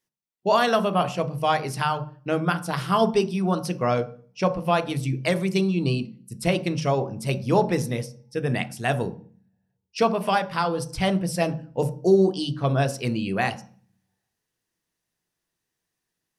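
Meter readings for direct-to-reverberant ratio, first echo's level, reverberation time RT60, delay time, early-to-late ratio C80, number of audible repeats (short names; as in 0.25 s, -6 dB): 10.0 dB, none, 0.45 s, none, 20.0 dB, none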